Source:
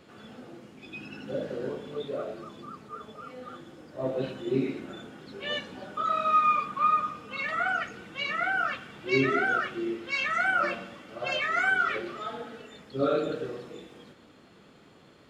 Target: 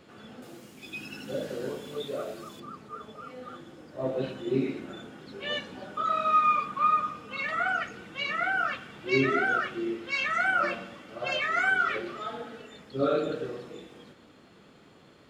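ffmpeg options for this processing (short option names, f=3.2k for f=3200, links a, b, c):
-filter_complex "[0:a]asettb=1/sr,asplit=3[a][b][c];[a]atrim=end=0.424[d];[b]atrim=start=0.42:end=2.6,asetpts=PTS-STARTPTS,afade=t=in:d=0.004:c=qsin,afade=t=out:st=2.176:d=0.004:c=qsin,aemphasis=mode=production:type=75fm[e];[c]atrim=start=2.596[f];[d][e]acrossfade=d=0.004:c1=hsin:c2=qsin[g];[g][f]acrossfade=d=0.004:c1=qsin:c2=hsin"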